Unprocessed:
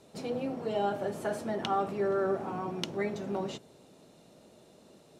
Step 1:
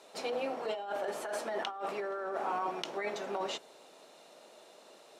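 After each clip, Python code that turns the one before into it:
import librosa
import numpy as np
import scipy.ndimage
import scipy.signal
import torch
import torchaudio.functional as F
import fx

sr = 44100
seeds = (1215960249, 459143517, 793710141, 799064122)

y = scipy.signal.sosfilt(scipy.signal.butter(2, 660.0, 'highpass', fs=sr, output='sos'), x)
y = fx.high_shelf(y, sr, hz=5700.0, db=-6.5)
y = fx.over_compress(y, sr, threshold_db=-40.0, ratio=-1.0)
y = F.gain(torch.from_numpy(y), 4.5).numpy()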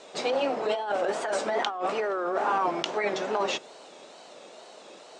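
y = fx.wow_flutter(x, sr, seeds[0], rate_hz=2.1, depth_cents=140.0)
y = scipy.signal.sosfilt(scipy.signal.butter(8, 8700.0, 'lowpass', fs=sr, output='sos'), y)
y = F.gain(torch.from_numpy(y), 8.5).numpy()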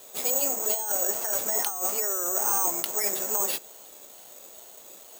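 y = (np.kron(x[::6], np.eye(6)[0]) * 6)[:len(x)]
y = F.gain(torch.from_numpy(y), -7.0).numpy()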